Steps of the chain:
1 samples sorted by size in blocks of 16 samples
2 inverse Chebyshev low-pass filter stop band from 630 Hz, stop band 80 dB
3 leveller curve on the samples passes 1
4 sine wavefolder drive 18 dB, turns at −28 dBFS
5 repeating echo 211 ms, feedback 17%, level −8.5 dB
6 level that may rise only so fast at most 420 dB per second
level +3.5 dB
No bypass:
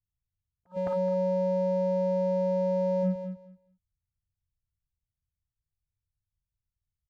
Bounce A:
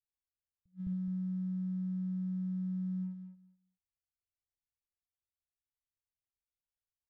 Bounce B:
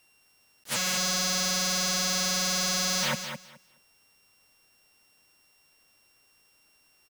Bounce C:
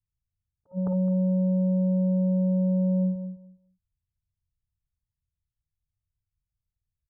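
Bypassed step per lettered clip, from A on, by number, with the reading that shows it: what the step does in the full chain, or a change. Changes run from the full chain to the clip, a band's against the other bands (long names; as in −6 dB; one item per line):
4, change in integrated loudness −9.5 LU
2, 1 kHz band +8.5 dB
3, change in crest factor −3.0 dB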